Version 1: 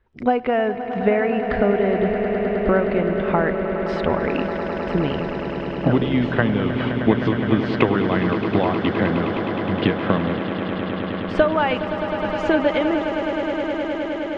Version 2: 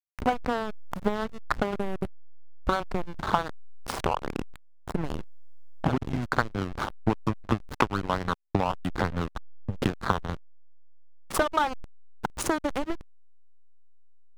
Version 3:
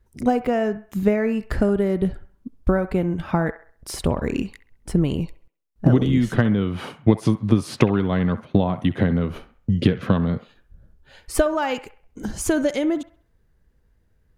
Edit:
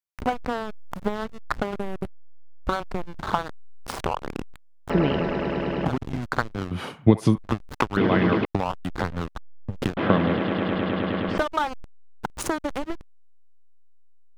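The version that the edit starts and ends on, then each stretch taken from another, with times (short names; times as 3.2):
2
4.9–5.85 from 1
6.71–7.38 from 3
7.97–8.45 from 1
9.97–11.38 from 1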